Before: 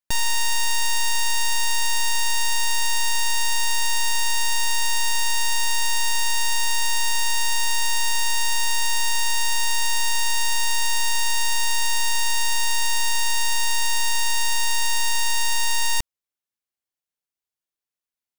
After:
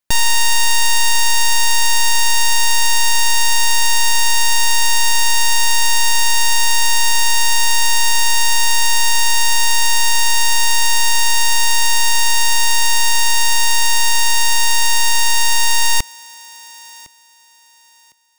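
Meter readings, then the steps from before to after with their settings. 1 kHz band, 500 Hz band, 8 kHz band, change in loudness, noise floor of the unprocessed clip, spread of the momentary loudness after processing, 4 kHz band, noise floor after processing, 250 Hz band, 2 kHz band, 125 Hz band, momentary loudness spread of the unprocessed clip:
+8.0 dB, +8.0 dB, +8.0 dB, +8.0 dB, under -85 dBFS, 0 LU, +8.0 dB, -49 dBFS, +8.0 dB, +7.5 dB, +8.0 dB, 0 LU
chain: thinning echo 1.057 s, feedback 26%, high-pass 160 Hz, level -21 dB; gain +8 dB

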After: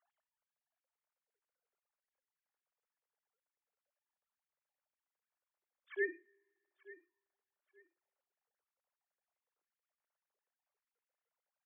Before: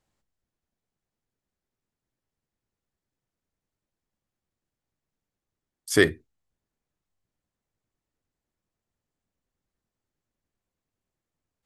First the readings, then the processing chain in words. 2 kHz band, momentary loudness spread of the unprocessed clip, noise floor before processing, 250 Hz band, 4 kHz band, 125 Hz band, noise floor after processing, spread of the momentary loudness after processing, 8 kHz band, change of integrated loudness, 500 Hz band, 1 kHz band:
-14.0 dB, 3 LU, under -85 dBFS, -23.5 dB, under -35 dB, under -40 dB, under -85 dBFS, 19 LU, under -35 dB, -16.5 dB, -16.0 dB, under -25 dB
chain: sine-wave speech; auto swell 0.736 s; LPF 2100 Hz; low shelf 350 Hz -10 dB; feedback echo 0.883 s, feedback 25%, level -19.5 dB; two-slope reverb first 0.37 s, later 1.9 s, from -20 dB, DRR 18.5 dB; gain +8 dB

